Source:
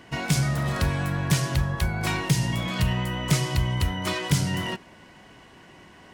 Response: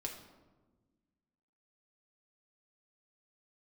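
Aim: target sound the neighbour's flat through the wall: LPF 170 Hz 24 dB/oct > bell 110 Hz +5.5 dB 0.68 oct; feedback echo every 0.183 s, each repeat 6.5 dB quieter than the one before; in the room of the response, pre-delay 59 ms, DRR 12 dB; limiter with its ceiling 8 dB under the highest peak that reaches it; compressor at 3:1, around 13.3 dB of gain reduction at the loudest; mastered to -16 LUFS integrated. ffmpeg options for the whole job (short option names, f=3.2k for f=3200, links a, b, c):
-filter_complex "[0:a]acompressor=threshold=-36dB:ratio=3,alimiter=level_in=4dB:limit=-24dB:level=0:latency=1,volume=-4dB,aecho=1:1:183|366|549|732|915|1098:0.473|0.222|0.105|0.0491|0.0231|0.0109,asplit=2[a][b];[1:a]atrim=start_sample=2205,adelay=59[c];[b][c]afir=irnorm=-1:irlink=0,volume=-11dB[d];[a][d]amix=inputs=2:normalize=0,lowpass=f=170:w=0.5412,lowpass=f=170:w=1.3066,equalizer=f=110:t=o:w=0.68:g=5.5,volume=21dB"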